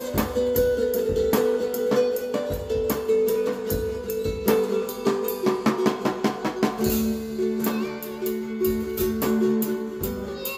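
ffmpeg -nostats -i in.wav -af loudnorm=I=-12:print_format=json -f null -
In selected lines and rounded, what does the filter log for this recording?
"input_i" : "-24.8",
"input_tp" : "-8.4",
"input_lra" : "2.3",
"input_thresh" : "-34.8",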